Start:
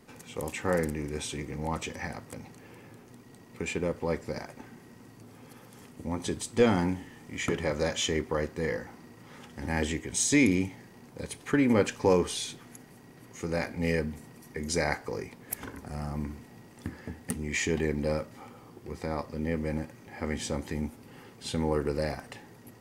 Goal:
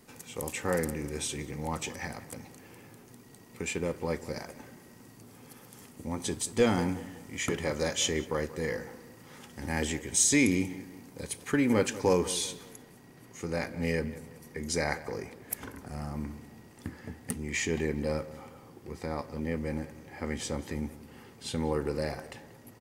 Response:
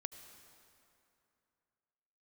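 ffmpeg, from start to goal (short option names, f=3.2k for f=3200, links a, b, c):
-filter_complex "[0:a]asetnsamples=n=441:p=0,asendcmd='12.73 highshelf g 2.5',highshelf=f=5.5k:g=9,asplit=2[a][b];[b]adelay=186,lowpass=f=2.4k:p=1,volume=-15.5dB,asplit=2[c][d];[d]adelay=186,lowpass=f=2.4k:p=1,volume=0.42,asplit=2[e][f];[f]adelay=186,lowpass=f=2.4k:p=1,volume=0.42,asplit=2[g][h];[h]adelay=186,lowpass=f=2.4k:p=1,volume=0.42[i];[a][c][e][g][i]amix=inputs=5:normalize=0,volume=-2dB"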